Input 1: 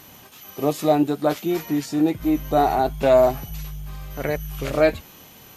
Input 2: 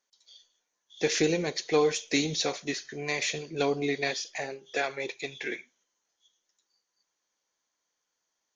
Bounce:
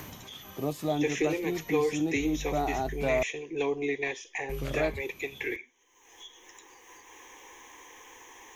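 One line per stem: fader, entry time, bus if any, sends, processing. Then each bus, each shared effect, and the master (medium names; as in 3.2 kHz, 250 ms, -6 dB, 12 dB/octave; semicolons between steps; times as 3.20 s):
-4.5 dB, 0.00 s, muted 3.23–4.49 s, no send, bass shelf 170 Hz +10 dB; auto duck -8 dB, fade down 0.25 s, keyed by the second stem
-0.5 dB, 0.00 s, no send, upward compressor, threshold -31 dBFS; static phaser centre 930 Hz, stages 8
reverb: none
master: three bands compressed up and down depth 40%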